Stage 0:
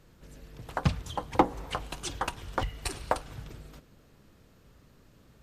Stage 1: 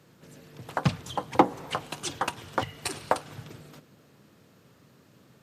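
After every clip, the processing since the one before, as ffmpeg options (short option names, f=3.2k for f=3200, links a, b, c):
-af "highpass=f=110:w=0.5412,highpass=f=110:w=1.3066,volume=3dB"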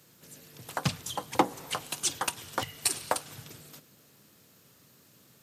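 -af "crystalizer=i=4:c=0,volume=-5.5dB"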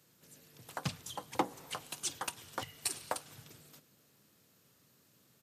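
-af "aresample=32000,aresample=44100,volume=-8dB"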